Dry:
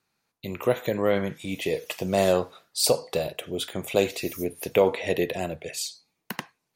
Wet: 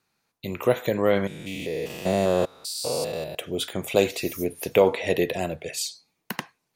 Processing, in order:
0:01.27–0:03.35: spectrum averaged block by block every 200 ms
level +2 dB

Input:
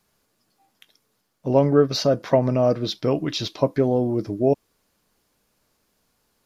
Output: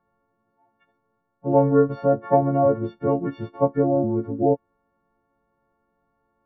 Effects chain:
every partial snapped to a pitch grid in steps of 4 semitones
low-pass filter 1,300 Hz 24 dB per octave

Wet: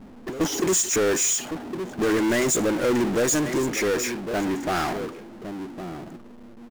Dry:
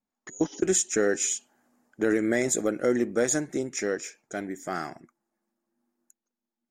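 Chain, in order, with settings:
single-tap delay 1,109 ms −22.5 dB
low-pass that shuts in the quiet parts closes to 360 Hz, open at −24.5 dBFS
power curve on the samples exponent 0.35
level −3.5 dB

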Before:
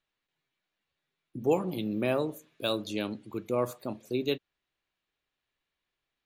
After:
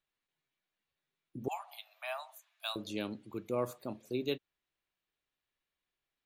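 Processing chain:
0:01.48–0:02.76: Butterworth high-pass 660 Hz 96 dB per octave
level −5 dB

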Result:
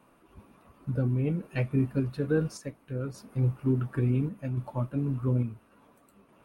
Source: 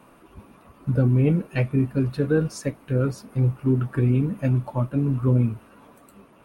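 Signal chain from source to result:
sample-and-hold tremolo
level −4.5 dB

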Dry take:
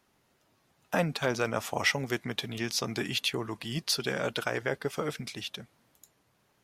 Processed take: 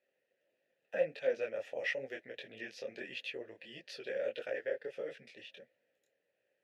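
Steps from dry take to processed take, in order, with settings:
formant filter e
micro pitch shift up and down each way 54 cents
level +5 dB

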